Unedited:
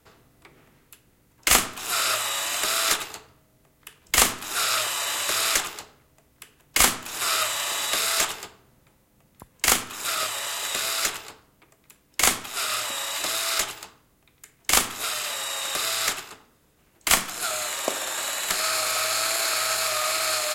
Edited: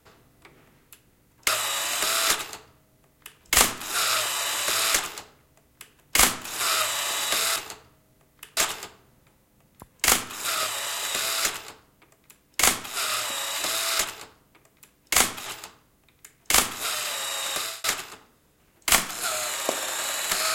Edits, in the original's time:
1.48–2.09 s: delete
3.00–4.01 s: copy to 8.17 s
11.12–12.53 s: copy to 13.65 s
15.72–16.03 s: fade out

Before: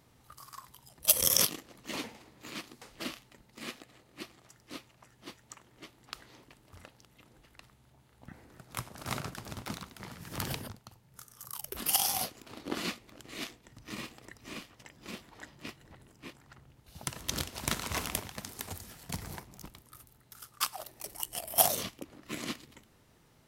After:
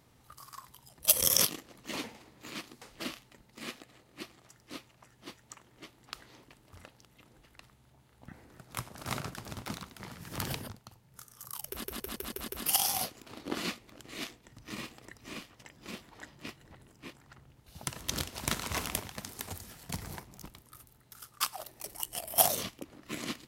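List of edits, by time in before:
11.68 s: stutter 0.16 s, 6 plays

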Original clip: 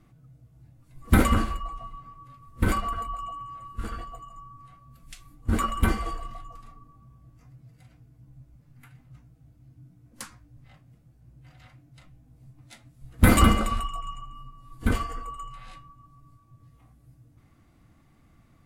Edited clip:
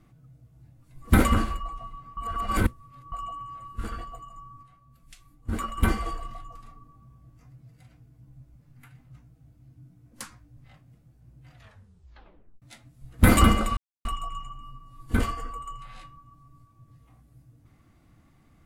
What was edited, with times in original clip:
2.17–3.12 s: reverse
4.63–5.78 s: gain -5.5 dB
11.53 s: tape stop 1.09 s
13.77 s: insert silence 0.28 s

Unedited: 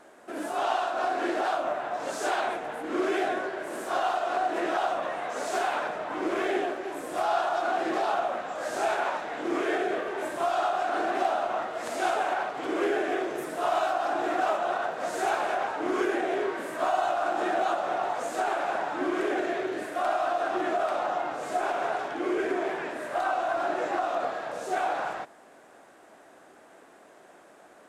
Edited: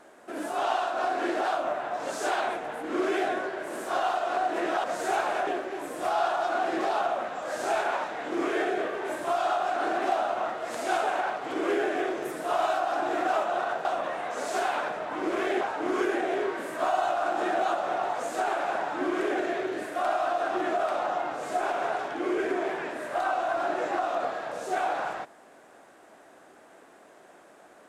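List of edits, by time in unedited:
4.84–6.60 s: swap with 14.98–15.61 s

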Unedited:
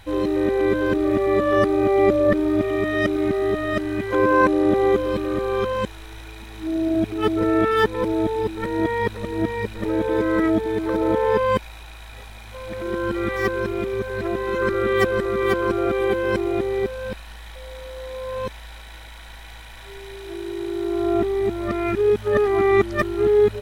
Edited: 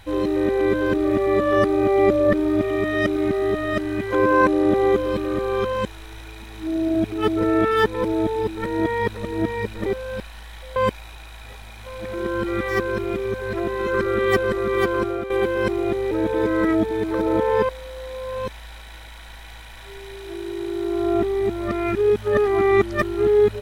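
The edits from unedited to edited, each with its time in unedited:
9.86–11.44 s: swap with 16.79–17.69 s
15.65–15.98 s: fade out, to -10.5 dB

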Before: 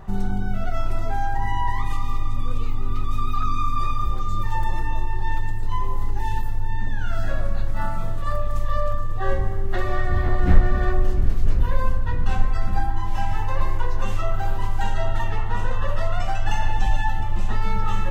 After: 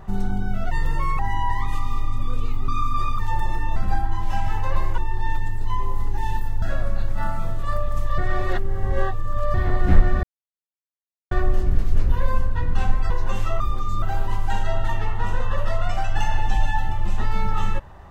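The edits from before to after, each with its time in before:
0.71–1.37 s: speed 137%
2.86–3.50 s: delete
4.00–4.42 s: move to 14.33 s
6.64–7.21 s: delete
8.77–10.13 s: reverse
10.82 s: insert silence 1.08 s
12.61–13.83 s: move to 5.00 s

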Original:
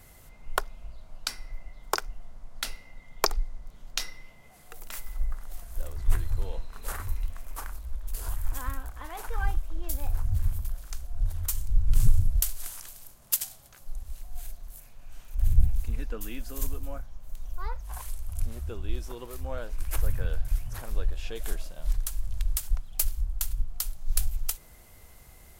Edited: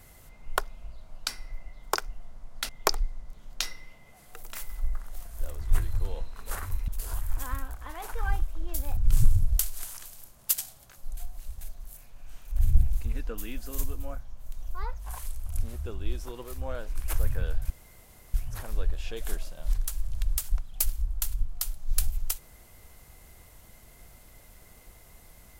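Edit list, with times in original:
2.69–3.06 s: delete
7.25–8.03 s: delete
10.12–11.80 s: delete
14.00–14.44 s: reverse
20.53 s: insert room tone 0.64 s

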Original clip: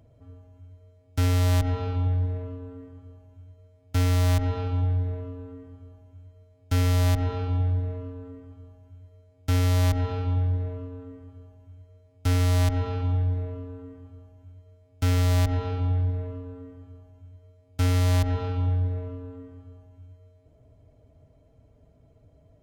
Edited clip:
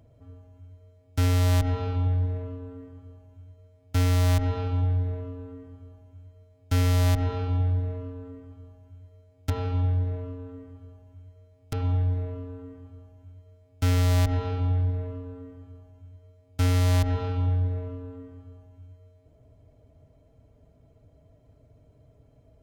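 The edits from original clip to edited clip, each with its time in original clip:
9.50–10.03 s: delete
12.26–12.93 s: delete

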